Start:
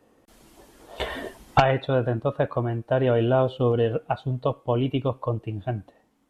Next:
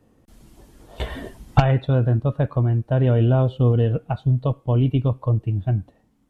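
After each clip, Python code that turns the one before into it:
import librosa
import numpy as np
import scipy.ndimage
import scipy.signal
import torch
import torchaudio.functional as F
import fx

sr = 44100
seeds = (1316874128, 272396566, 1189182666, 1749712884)

y = fx.bass_treble(x, sr, bass_db=14, treble_db=2)
y = F.gain(torch.from_numpy(y), -3.5).numpy()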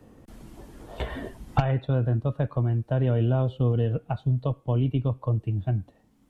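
y = fx.band_squash(x, sr, depth_pct=40)
y = F.gain(torch.from_numpy(y), -5.5).numpy()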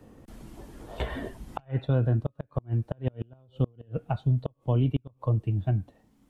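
y = fx.gate_flip(x, sr, shuts_db=-15.0, range_db=-34)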